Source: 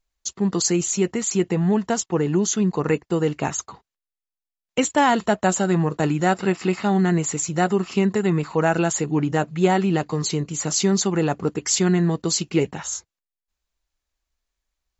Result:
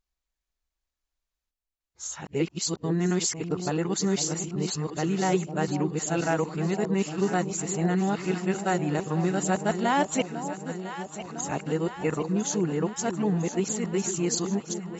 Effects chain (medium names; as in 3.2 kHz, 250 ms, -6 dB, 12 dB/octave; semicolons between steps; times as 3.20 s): reverse the whole clip; echo whose repeats swap between lows and highs 502 ms, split 870 Hz, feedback 80%, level -9 dB; trim -6.5 dB